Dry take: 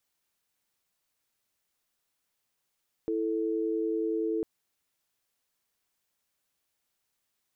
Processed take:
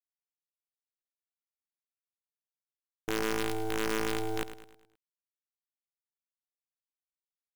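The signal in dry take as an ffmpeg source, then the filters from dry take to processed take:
-f lavfi -i "aevalsrc='0.0335*(sin(2*PI*329.63*t)+sin(2*PI*440*t))':d=1.35:s=44100"
-filter_complex "[0:a]afwtdn=0.00631,acrusher=bits=5:dc=4:mix=0:aa=0.000001,asplit=2[a][b];[b]aecho=0:1:105|210|315|420|525:0.251|0.113|0.0509|0.0229|0.0103[c];[a][c]amix=inputs=2:normalize=0"

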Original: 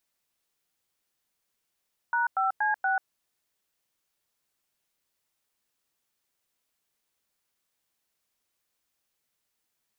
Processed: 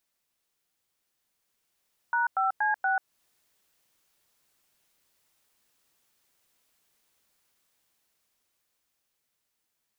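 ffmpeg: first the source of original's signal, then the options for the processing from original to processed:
-f lavfi -i "aevalsrc='0.0531*clip(min(mod(t,0.237),0.139-mod(t,0.237))/0.002,0,1)*(eq(floor(t/0.237),0)*(sin(2*PI*941*mod(t,0.237))+sin(2*PI*1477*mod(t,0.237)))+eq(floor(t/0.237),1)*(sin(2*PI*770*mod(t,0.237))+sin(2*PI*1336*mod(t,0.237)))+eq(floor(t/0.237),2)*(sin(2*PI*852*mod(t,0.237))+sin(2*PI*1633*mod(t,0.237)))+eq(floor(t/0.237),3)*(sin(2*PI*770*mod(t,0.237))+sin(2*PI*1477*mod(t,0.237))))':d=0.948:s=44100"
-af "dynaudnorm=f=200:g=21:m=8dB,alimiter=limit=-19.5dB:level=0:latency=1:release=252"

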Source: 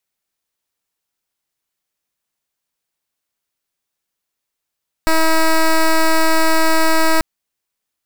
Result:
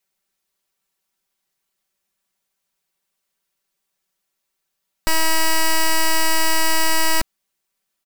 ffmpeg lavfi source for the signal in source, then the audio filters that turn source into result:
-f lavfi -i "aevalsrc='0.251*(2*lt(mod(321*t,1),0.1)-1)':d=2.14:s=44100"
-filter_complex "[0:a]aecho=1:1:5.2:0.9,acrossover=split=3300[a][b];[a]asoftclip=type=tanh:threshold=-14.5dB[c];[c][b]amix=inputs=2:normalize=0"

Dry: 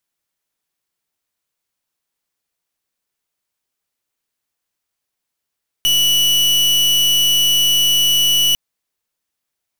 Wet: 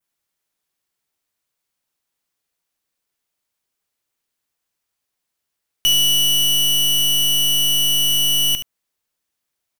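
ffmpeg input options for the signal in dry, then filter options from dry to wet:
-f lavfi -i "aevalsrc='0.2*(2*lt(mod(2950*t,1),0.38)-1)':d=2.7:s=44100"
-af "adynamicequalizer=threshold=0.0398:dfrequency=4300:dqfactor=1:tfrequency=4300:tqfactor=1:attack=5:release=100:ratio=0.375:range=2.5:mode=cutabove:tftype=bell,aecho=1:1:73:0.299"

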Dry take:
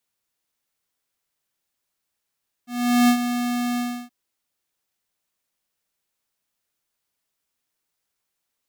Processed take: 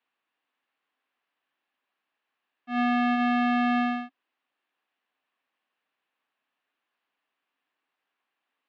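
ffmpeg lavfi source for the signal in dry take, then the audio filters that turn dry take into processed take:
-f lavfi -i "aevalsrc='0.188*(2*lt(mod(243*t,1),0.5)-1)':d=1.424:s=44100,afade=t=in:d=0.414,afade=t=out:st=0.414:d=0.083:silence=0.335,afade=t=out:st=1.11:d=0.314"
-af "highpass=270,equalizer=f=270:t=q:w=4:g=7,equalizer=f=760:t=q:w=4:g=5,equalizer=f=1.1k:t=q:w=4:g=7,equalizer=f=1.7k:t=q:w=4:g=6,equalizer=f=2.7k:t=q:w=4:g=5,lowpass=f=3.4k:w=0.5412,lowpass=f=3.4k:w=1.3066,alimiter=limit=-15.5dB:level=0:latency=1:release=122"

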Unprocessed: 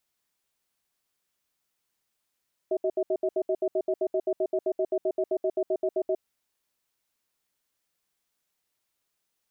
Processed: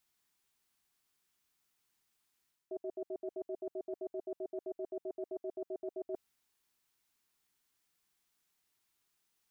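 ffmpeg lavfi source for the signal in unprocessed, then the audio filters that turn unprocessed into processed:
-f lavfi -i "aevalsrc='0.0531*(sin(2*PI*377*t)+sin(2*PI*635*t))*clip(min(mod(t,0.13),0.06-mod(t,0.13))/0.005,0,1)':d=3.49:s=44100"
-af "equalizer=f=560:t=o:w=0.3:g=-12,areverse,acompressor=threshold=-40dB:ratio=4,areverse"

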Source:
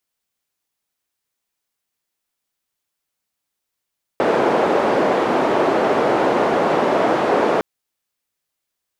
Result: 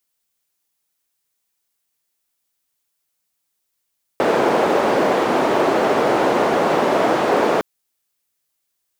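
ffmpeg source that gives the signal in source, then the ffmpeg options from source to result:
-f lavfi -i "anoisesrc=c=white:d=3.41:r=44100:seed=1,highpass=f=360,lowpass=f=570,volume=6.8dB"
-af "highshelf=f=5.2k:g=7.5,acrusher=bits=9:mode=log:mix=0:aa=0.000001"

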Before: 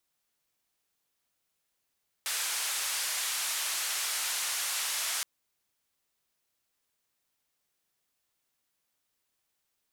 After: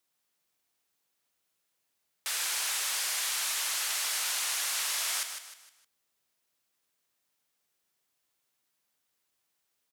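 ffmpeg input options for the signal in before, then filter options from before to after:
-f lavfi -i "anoisesrc=c=white:d=2.97:r=44100:seed=1,highpass=f=1000,lowpass=f=11000,volume=-24.2dB"
-filter_complex "[0:a]highpass=f=110:p=1,asplit=2[a][b];[b]aecho=0:1:154|308|462|616:0.398|0.151|0.0575|0.0218[c];[a][c]amix=inputs=2:normalize=0"

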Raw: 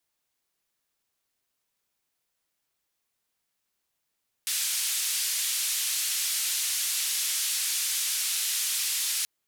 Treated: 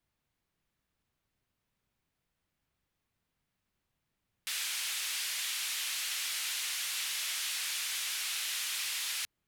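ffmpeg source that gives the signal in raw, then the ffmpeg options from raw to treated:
-f lavfi -i "anoisesrc=c=white:d=4.78:r=44100:seed=1,highpass=f=2700,lowpass=f=12000,volume=-19.8dB"
-af "bass=f=250:g=14,treble=f=4k:g=-10"

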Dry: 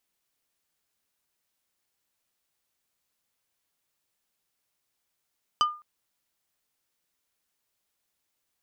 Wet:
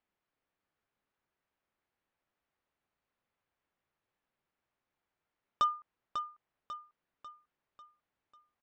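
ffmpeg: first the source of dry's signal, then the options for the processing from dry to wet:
-f lavfi -i "aevalsrc='0.15*pow(10,-3*t/0.35)*sin(2*PI*1210*t)+0.0794*pow(10,-3*t/0.117)*sin(2*PI*3025*t)+0.0422*pow(10,-3*t/0.066)*sin(2*PI*4840*t)+0.0224*pow(10,-3*t/0.051)*sin(2*PI*6050*t)+0.0119*pow(10,-3*t/0.037)*sin(2*PI*7865*t)':d=0.21:s=44100"
-af "lowpass=1.9k,aresample=16000,volume=23dB,asoftclip=hard,volume=-23dB,aresample=44100,aecho=1:1:545|1090|1635|2180|2725:0.398|0.183|0.0842|0.0388|0.0178"

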